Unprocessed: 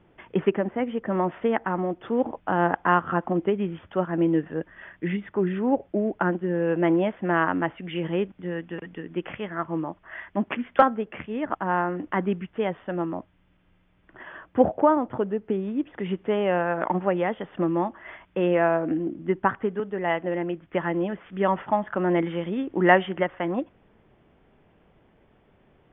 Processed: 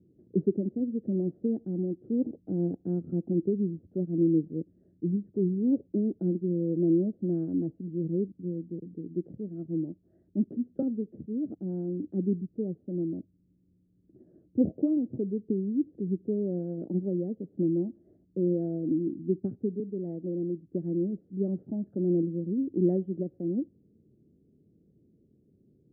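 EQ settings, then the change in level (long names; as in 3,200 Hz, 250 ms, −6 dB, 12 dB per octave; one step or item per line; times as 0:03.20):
high-pass filter 100 Hz
inverse Chebyshev low-pass filter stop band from 940 Hz, stop band 50 dB
0.0 dB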